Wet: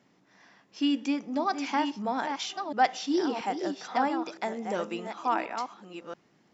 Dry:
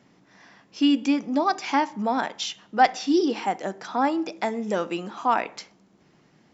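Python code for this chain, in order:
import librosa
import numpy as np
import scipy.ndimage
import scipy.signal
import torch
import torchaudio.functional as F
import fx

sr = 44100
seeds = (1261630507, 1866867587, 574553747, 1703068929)

y = fx.reverse_delay(x, sr, ms=682, wet_db=-6.5)
y = fx.low_shelf(y, sr, hz=110.0, db=-8.5)
y = y * 10.0 ** (-5.5 / 20.0)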